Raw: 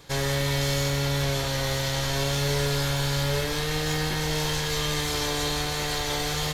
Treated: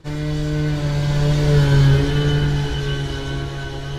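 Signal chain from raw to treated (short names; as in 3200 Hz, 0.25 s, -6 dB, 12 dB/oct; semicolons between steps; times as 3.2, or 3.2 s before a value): Doppler pass-by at 2.83, 26 m/s, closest 20 m; darkening echo 0.724 s, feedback 28%, low-pass 3600 Hz, level -16 dB; in parallel at -1.5 dB: limiter -27 dBFS, peak gain reduction 11.5 dB; on the sum: low shelf 260 Hz +11.5 dB; on a send at -8 dB: reverb RT60 0.70 s, pre-delay 5 ms; on the sum: plain phase-vocoder stretch 0.61×; LPF 11000 Hz 12 dB/oct; high shelf 4200 Hz -8 dB; small resonant body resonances 340/1500/3000 Hz, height 12 dB, ringing for 60 ms; gain +3.5 dB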